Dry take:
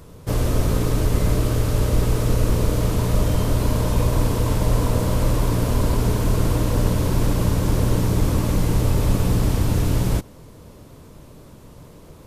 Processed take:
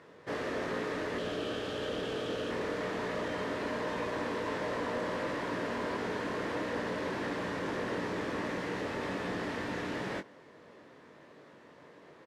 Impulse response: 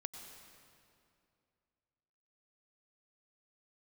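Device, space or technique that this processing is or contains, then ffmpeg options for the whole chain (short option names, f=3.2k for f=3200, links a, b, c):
intercom: -filter_complex "[0:a]asettb=1/sr,asplit=3[a][b][c];[a]atrim=end=1.184[d];[b]atrim=start=1.18:end=2.51,asetpts=PTS-STARTPTS,afade=t=in:d=0.004:c=qsin,afade=t=out:st=1.326:d=0.004:c=qsin,equalizer=f=1k:t=o:w=0.33:g=-8,equalizer=f=2k:t=o:w=0.33:g=-10,equalizer=f=3.15k:t=o:w=0.33:g=10[e];[c]atrim=start=2.506[f];[d][e]acrossfade=d=0.004:c1=hsin:c2=qsin[g];[g][f]acrossfade=d=0.004:c1=qsin:c2=hsin,highpass=320,lowpass=3.6k,equalizer=f=1.8k:t=o:w=0.38:g=11.5,asoftclip=type=tanh:threshold=-21dB,asplit=2[h][i];[i]adelay=21,volume=-7.5dB[j];[h][j]amix=inputs=2:normalize=0,volume=-6.5dB"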